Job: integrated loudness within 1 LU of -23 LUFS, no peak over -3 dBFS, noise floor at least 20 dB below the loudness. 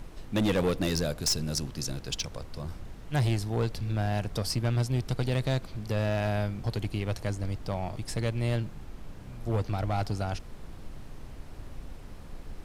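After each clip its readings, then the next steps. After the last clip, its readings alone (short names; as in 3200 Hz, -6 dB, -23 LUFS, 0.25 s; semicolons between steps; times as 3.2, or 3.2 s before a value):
clipped 1.7%; flat tops at -21.5 dBFS; noise floor -45 dBFS; noise floor target -51 dBFS; loudness -31.0 LUFS; peak -21.5 dBFS; loudness target -23.0 LUFS
-> clip repair -21.5 dBFS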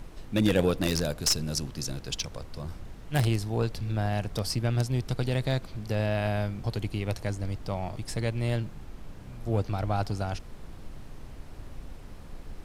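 clipped 0.0%; noise floor -45 dBFS; noise floor target -50 dBFS
-> noise print and reduce 6 dB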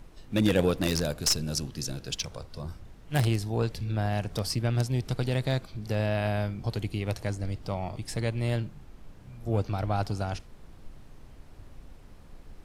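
noise floor -51 dBFS; loudness -30.0 LUFS; peak -12.5 dBFS; loudness target -23.0 LUFS
-> gain +7 dB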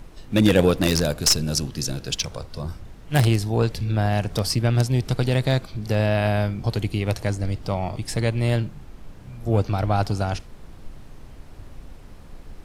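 loudness -23.0 LUFS; peak -5.5 dBFS; noise floor -44 dBFS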